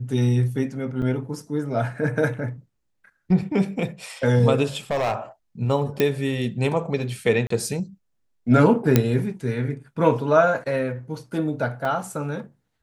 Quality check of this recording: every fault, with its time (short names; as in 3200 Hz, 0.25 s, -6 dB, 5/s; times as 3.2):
1.02 gap 2.6 ms
4.91–5.14 clipped -19 dBFS
6 pop -7 dBFS
7.47–7.5 gap 34 ms
8.96 pop -2 dBFS
11.85 gap 2.3 ms